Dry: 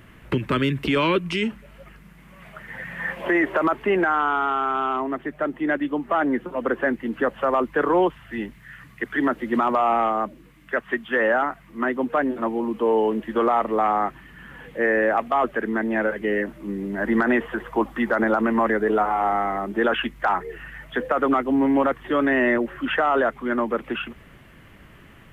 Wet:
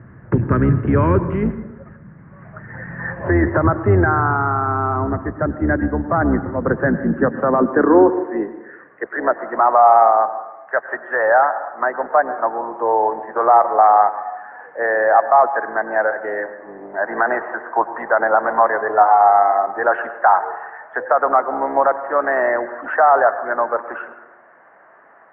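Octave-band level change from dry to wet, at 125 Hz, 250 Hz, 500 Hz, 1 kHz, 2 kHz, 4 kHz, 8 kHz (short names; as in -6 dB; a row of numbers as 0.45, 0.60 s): +13.0 dB, +1.5 dB, +5.5 dB, +8.5 dB, +3.0 dB, under -25 dB, n/a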